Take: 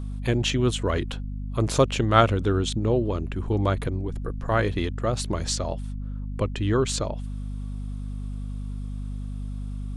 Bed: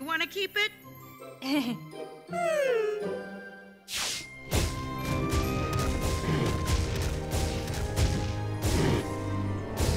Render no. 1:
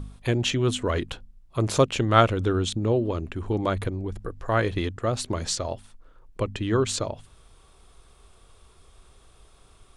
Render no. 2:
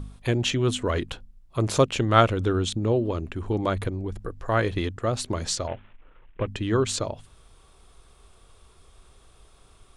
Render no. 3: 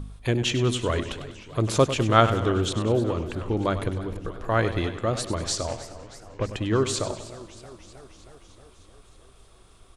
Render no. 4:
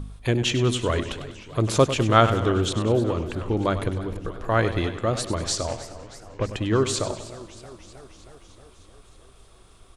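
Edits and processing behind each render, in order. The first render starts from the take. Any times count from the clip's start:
de-hum 50 Hz, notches 5
5.67–6.47 s: CVSD coder 16 kbps
on a send: feedback delay 98 ms, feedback 52%, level -12 dB; on the sum: modulated delay 311 ms, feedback 70%, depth 145 cents, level -17.5 dB
trim +1.5 dB; peak limiter -2 dBFS, peak gain reduction 1.5 dB

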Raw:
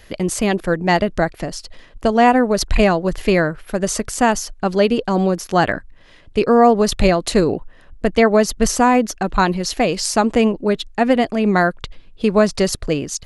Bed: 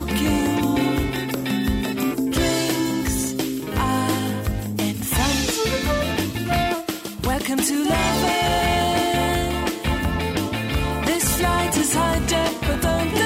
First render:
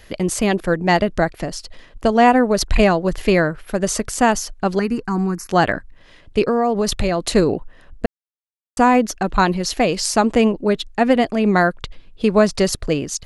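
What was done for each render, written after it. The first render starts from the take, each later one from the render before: 4.79–5.49 s: static phaser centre 1.4 kHz, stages 4; 6.48–7.30 s: compression 5:1, threshold -14 dBFS; 8.06–8.77 s: mute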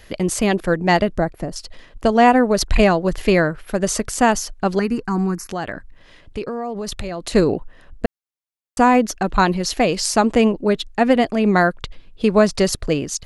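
1.16–1.56 s: peaking EQ 3.6 kHz -11.5 dB 2.8 oct; 5.37–7.34 s: compression 2.5:1, threshold -27 dBFS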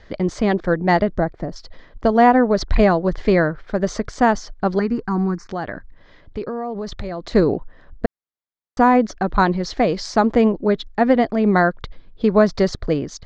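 Bessel low-pass 3.6 kHz, order 8; peaking EQ 2.7 kHz -11.5 dB 0.33 oct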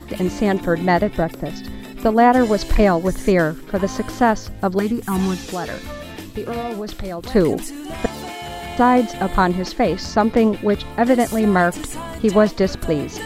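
add bed -11 dB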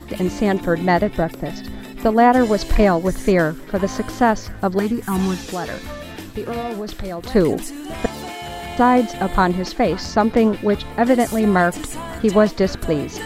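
band-passed feedback delay 548 ms, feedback 82%, band-pass 1.8 kHz, level -22 dB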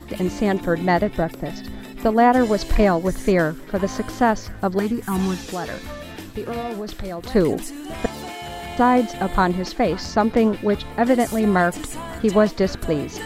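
trim -2 dB

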